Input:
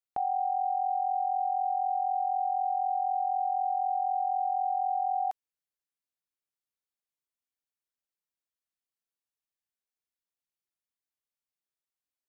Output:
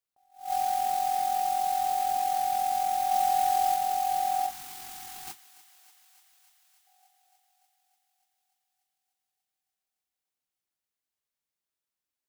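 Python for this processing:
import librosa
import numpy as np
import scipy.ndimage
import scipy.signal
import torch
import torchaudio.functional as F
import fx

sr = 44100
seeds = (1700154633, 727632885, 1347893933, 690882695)

y = fx.peak_eq(x, sr, hz=810.0, db=3.0, octaves=0.77, at=(3.1, 3.75))
y = fx.mod_noise(y, sr, seeds[0], snr_db=13)
y = fx.comb_fb(y, sr, f0_hz=740.0, decay_s=0.34, harmonics='all', damping=0.0, mix_pct=40, at=(4.46, 5.27))
y = fx.echo_thinned(y, sr, ms=293, feedback_pct=76, hz=420.0, wet_db=-17)
y = fx.spec_box(y, sr, start_s=4.5, length_s=2.37, low_hz=420.0, high_hz=850.0, gain_db=-18)
y = fx.attack_slew(y, sr, db_per_s=170.0)
y = y * librosa.db_to_amplitude(2.0)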